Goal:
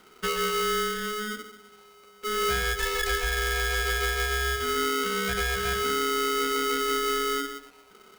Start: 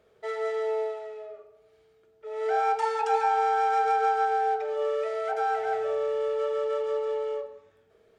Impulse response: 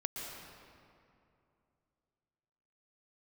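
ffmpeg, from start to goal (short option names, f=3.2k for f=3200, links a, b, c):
-filter_complex "[0:a]acrossover=split=260|3000[a][b][c];[b]acompressor=threshold=-35dB:ratio=6[d];[a][d][c]amix=inputs=3:normalize=0,aeval=exprs='val(0)*sgn(sin(2*PI*850*n/s))':c=same,volume=8.5dB"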